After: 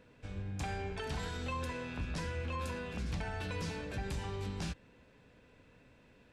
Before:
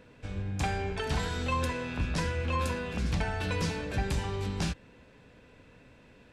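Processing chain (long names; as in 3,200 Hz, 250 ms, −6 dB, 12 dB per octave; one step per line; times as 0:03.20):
brickwall limiter −23.5 dBFS, peak gain reduction 4 dB
level −6 dB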